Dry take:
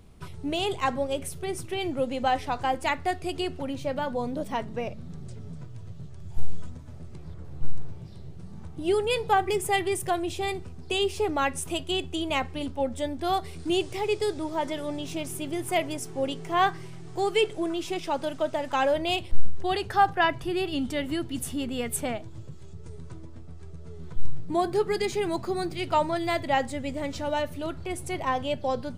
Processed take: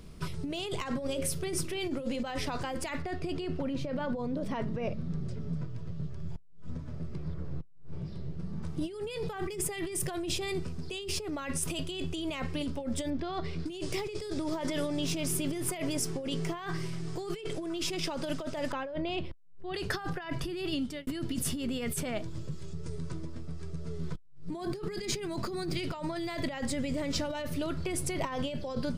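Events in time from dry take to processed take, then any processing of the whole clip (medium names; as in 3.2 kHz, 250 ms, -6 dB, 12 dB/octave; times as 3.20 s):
1.04–2.20 s: hum notches 60/120/180/240/300/360/420/480/540 Hz
3.02–8.63 s: low-pass 2.1 kHz 6 dB/octave
13.10–13.66 s: distance through air 170 m
18.72–19.74 s: tape spacing loss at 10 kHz 27 dB
20.50–21.07 s: fade out
whole clip: graphic EQ with 31 bands 100 Hz -10 dB, 160 Hz +4 dB, 800 Hz -8 dB, 5 kHz +6 dB; compressor with a negative ratio -34 dBFS, ratio -1; trim -2 dB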